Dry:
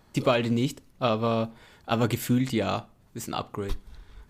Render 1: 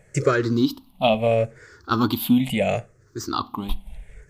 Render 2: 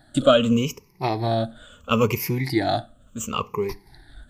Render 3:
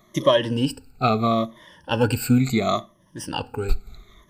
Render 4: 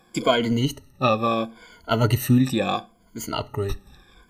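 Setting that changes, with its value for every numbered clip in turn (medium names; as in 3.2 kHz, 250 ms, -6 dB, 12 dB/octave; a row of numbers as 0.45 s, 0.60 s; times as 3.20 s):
drifting ripple filter, ripples per octave: 0.51, 0.8, 1.2, 1.8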